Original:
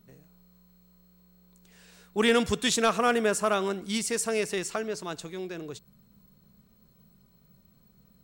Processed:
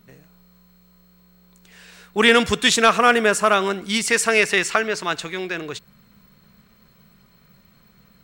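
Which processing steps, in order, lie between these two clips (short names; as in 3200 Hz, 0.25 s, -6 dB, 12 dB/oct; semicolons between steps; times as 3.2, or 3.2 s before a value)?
bell 2000 Hz +7.5 dB 2.3 oct, from 4.08 s +13.5 dB; gain +5 dB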